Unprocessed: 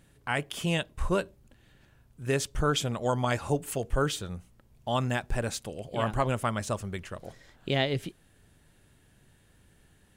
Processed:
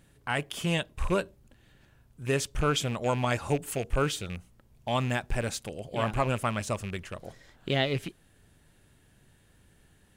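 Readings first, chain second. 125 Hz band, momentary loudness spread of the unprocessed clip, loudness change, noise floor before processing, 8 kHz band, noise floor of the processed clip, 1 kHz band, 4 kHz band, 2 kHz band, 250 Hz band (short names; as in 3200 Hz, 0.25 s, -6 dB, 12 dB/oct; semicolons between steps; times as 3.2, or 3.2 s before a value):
0.0 dB, 14 LU, 0.0 dB, -62 dBFS, 0.0 dB, -62 dBFS, 0.0 dB, +0.5 dB, +0.5 dB, 0.0 dB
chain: rattling part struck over -34 dBFS, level -30 dBFS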